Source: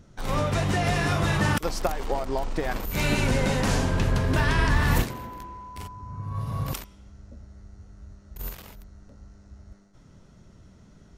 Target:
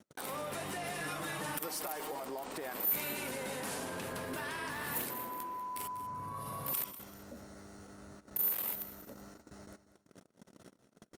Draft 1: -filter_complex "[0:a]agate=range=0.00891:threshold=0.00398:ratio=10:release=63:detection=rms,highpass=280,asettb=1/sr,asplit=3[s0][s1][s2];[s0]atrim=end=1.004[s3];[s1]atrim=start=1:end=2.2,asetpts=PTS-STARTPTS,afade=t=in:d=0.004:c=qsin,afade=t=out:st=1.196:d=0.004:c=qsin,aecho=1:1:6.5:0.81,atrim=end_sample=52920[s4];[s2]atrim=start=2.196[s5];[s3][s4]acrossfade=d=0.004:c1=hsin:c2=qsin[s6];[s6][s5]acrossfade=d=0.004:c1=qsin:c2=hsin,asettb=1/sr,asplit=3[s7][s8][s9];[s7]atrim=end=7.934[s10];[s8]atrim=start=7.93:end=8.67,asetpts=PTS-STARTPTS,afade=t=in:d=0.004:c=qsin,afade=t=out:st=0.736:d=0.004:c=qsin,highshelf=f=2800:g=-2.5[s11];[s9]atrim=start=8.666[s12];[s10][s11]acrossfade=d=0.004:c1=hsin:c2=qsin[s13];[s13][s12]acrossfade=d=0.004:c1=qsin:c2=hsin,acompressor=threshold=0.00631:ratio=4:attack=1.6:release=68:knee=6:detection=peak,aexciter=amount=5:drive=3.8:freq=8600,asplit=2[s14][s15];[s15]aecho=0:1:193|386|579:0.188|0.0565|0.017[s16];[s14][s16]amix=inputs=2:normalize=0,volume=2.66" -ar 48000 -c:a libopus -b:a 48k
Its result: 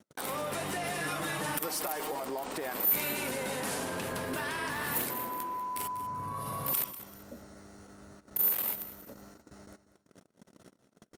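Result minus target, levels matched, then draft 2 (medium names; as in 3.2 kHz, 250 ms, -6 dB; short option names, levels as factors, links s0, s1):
compression: peak gain reduction -5 dB
-filter_complex "[0:a]agate=range=0.00891:threshold=0.00398:ratio=10:release=63:detection=rms,highpass=280,asettb=1/sr,asplit=3[s0][s1][s2];[s0]atrim=end=1.004[s3];[s1]atrim=start=1:end=2.2,asetpts=PTS-STARTPTS,afade=t=in:d=0.004:c=qsin,afade=t=out:st=1.196:d=0.004:c=qsin,aecho=1:1:6.5:0.81,atrim=end_sample=52920[s4];[s2]atrim=start=2.196[s5];[s3][s4]acrossfade=d=0.004:c1=hsin:c2=qsin[s6];[s6][s5]acrossfade=d=0.004:c1=qsin:c2=hsin,asettb=1/sr,asplit=3[s7][s8][s9];[s7]atrim=end=7.934[s10];[s8]atrim=start=7.93:end=8.67,asetpts=PTS-STARTPTS,afade=t=in:d=0.004:c=qsin,afade=t=out:st=0.736:d=0.004:c=qsin,highshelf=f=2800:g=-2.5[s11];[s9]atrim=start=8.666[s12];[s10][s11]acrossfade=d=0.004:c1=hsin:c2=qsin[s13];[s13][s12]acrossfade=d=0.004:c1=qsin:c2=hsin,acompressor=threshold=0.00299:ratio=4:attack=1.6:release=68:knee=6:detection=peak,aexciter=amount=5:drive=3.8:freq=8600,asplit=2[s14][s15];[s15]aecho=0:1:193|386|579:0.188|0.0565|0.017[s16];[s14][s16]amix=inputs=2:normalize=0,volume=2.66" -ar 48000 -c:a libopus -b:a 48k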